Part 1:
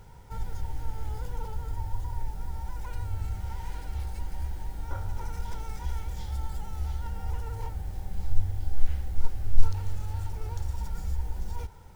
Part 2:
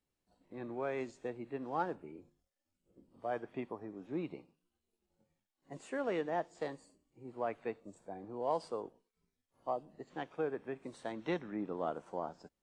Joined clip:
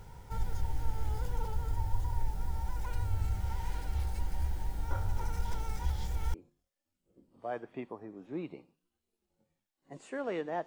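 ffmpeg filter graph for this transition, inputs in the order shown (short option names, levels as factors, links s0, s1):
-filter_complex "[0:a]apad=whole_dur=10.66,atrim=end=10.66,asplit=2[s0][s1];[s0]atrim=end=5.902[s2];[s1]atrim=start=5.898:end=6.342,asetpts=PTS-STARTPTS,areverse[s3];[1:a]atrim=start=2.138:end=6.46[s4];[s2][s3]acrossfade=d=0.004:c1=hsin:c2=hsin[s5];[s5][s4]acrossfade=d=0.004:c1=hsin:c2=hsin"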